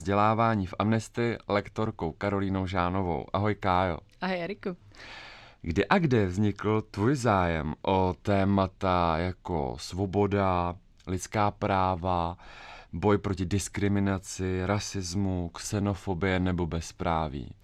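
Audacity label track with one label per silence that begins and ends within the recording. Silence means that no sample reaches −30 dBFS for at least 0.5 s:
4.720000	5.640000	silence
12.310000	12.940000	silence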